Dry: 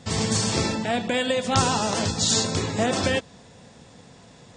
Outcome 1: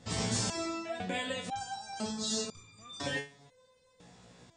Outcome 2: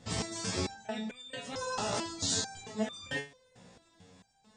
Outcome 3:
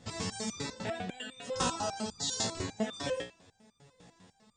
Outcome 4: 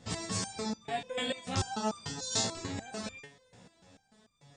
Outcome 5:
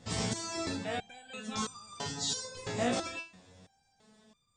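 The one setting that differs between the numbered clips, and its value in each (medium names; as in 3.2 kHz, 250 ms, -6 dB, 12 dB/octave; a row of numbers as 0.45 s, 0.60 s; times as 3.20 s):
resonator arpeggio, rate: 2 Hz, 4.5 Hz, 10 Hz, 6.8 Hz, 3 Hz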